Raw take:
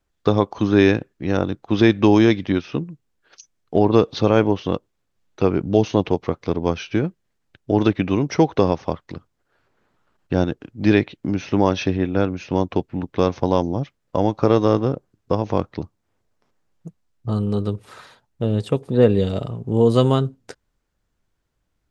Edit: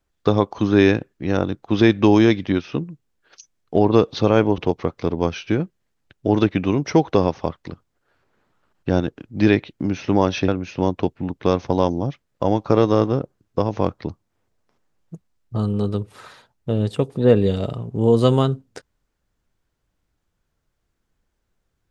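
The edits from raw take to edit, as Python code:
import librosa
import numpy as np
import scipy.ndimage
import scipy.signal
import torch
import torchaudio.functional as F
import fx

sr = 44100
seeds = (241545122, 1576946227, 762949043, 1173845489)

y = fx.edit(x, sr, fx.cut(start_s=4.58, length_s=1.44),
    fx.cut(start_s=11.92, length_s=0.29), tone=tone)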